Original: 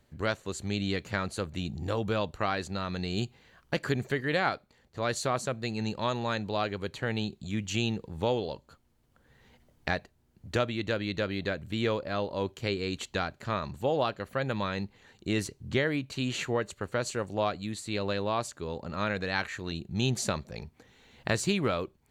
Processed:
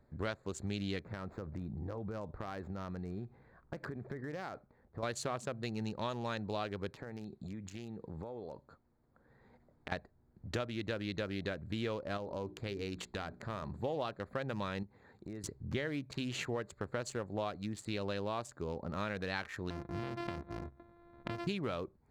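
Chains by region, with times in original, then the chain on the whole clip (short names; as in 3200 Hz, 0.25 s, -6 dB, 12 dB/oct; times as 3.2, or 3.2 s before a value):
1–5.03 median filter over 9 samples + bell 9600 Hz -9 dB 0.93 oct + compressor 8:1, threshold -36 dBFS
6.89–9.92 low shelf 100 Hz -8.5 dB + compressor 12:1, threshold -39 dBFS
12.17–13.82 notches 60/120/180/240/300/360/420 Hz + compressor 2.5:1, threshold -35 dBFS
14.83–15.44 HPF 53 Hz + compressor 4:1, threshold -43 dBFS
19.7–21.47 sample sorter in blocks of 128 samples + steep low-pass 4100 Hz 72 dB/oct + compressor 2.5:1, threshold -35 dBFS
whole clip: Wiener smoothing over 15 samples; compressor 3:1, threshold -36 dBFS; de-hum 65.6 Hz, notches 2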